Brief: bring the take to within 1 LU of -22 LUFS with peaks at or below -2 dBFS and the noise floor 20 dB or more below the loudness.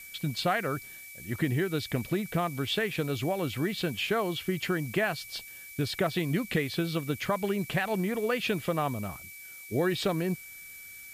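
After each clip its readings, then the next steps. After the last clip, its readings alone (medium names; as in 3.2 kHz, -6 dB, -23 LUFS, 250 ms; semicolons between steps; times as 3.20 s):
steady tone 2.3 kHz; tone level -46 dBFS; noise floor -46 dBFS; noise floor target -51 dBFS; loudness -30.5 LUFS; peak level -15.5 dBFS; loudness target -22.0 LUFS
-> band-stop 2.3 kHz, Q 30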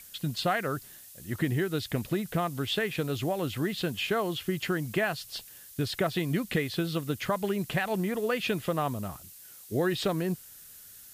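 steady tone not found; noise floor -50 dBFS; noise floor target -51 dBFS
-> noise reduction 6 dB, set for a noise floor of -50 dBFS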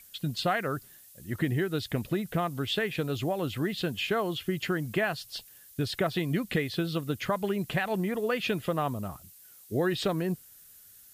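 noise floor -54 dBFS; loudness -30.5 LUFS; peak level -16.0 dBFS; loudness target -22.0 LUFS
-> trim +8.5 dB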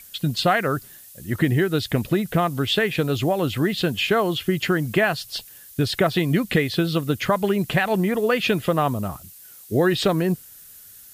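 loudness -22.0 LUFS; peak level -7.5 dBFS; noise floor -46 dBFS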